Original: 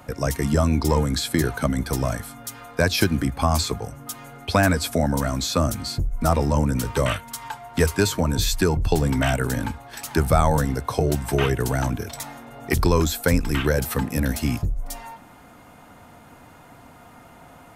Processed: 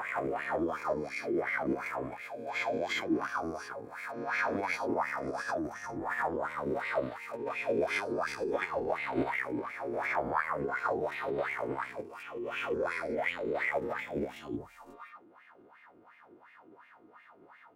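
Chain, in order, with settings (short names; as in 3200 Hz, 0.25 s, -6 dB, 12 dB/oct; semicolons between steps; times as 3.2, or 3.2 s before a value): spectral swells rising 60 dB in 1.94 s; in parallel at +2 dB: limiter -9.5 dBFS, peak gain reduction 9.5 dB; on the sum: wah 2.8 Hz 250–1700 Hz, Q 7.7; formant shift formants +5 st; gain -8 dB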